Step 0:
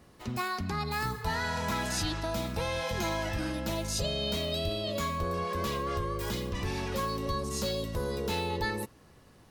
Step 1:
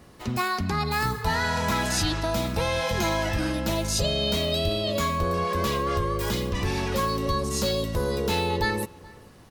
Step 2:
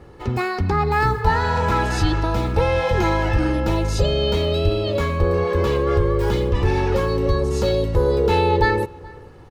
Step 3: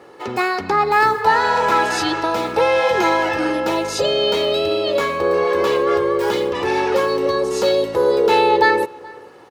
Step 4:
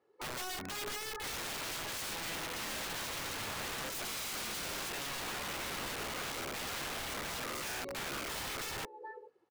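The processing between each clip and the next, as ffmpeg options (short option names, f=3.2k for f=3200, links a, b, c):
-filter_complex "[0:a]asplit=2[a][b];[b]adelay=425.7,volume=-23dB,highshelf=f=4k:g=-9.58[c];[a][c]amix=inputs=2:normalize=0,volume=6.5dB"
-af "lowpass=f=1.2k:p=1,aecho=1:1:2.3:0.57,volume=7dB"
-af "highpass=380,volume=5.5dB"
-af "afftdn=nr=25:nf=-27,acompressor=threshold=-25dB:ratio=12,aeval=exprs='(mod(23.7*val(0)+1,2)-1)/23.7':c=same,volume=-7.5dB"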